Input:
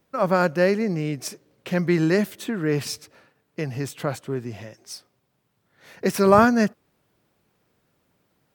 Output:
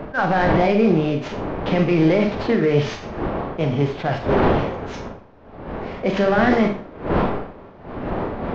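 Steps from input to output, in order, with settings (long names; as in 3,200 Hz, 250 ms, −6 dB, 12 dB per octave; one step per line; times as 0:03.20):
variable-slope delta modulation 32 kbit/s
wind on the microphone 570 Hz −33 dBFS
dynamic equaliser 3,800 Hz, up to +4 dB, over −40 dBFS, Q 0.72
brickwall limiter −17 dBFS, peak gain reduction 11.5 dB
high-frequency loss of the air 380 metres
formants moved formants +3 semitones
four-comb reverb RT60 0.39 s, combs from 28 ms, DRR 4 dB
level that may rise only so fast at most 350 dB per second
level +8.5 dB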